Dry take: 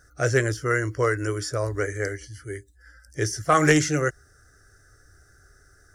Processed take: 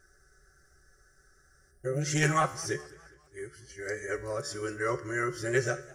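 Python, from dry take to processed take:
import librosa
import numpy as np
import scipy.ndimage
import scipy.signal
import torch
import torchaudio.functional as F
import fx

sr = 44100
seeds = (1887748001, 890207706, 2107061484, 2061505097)

y = x[::-1].copy()
y = y + 0.7 * np.pad(y, (int(5.3 * sr / 1000.0), 0))[:len(y)]
y = fx.spec_box(y, sr, start_s=1.71, length_s=0.31, low_hz=750.0, high_hz=8400.0, gain_db=-13)
y = fx.comb_fb(y, sr, f0_hz=72.0, decay_s=0.59, harmonics='all', damping=0.0, mix_pct=60)
y = fx.echo_warbled(y, sr, ms=205, feedback_pct=48, rate_hz=2.8, cents=156, wet_db=-22.0)
y = F.gain(torch.from_numpy(y), -2.0).numpy()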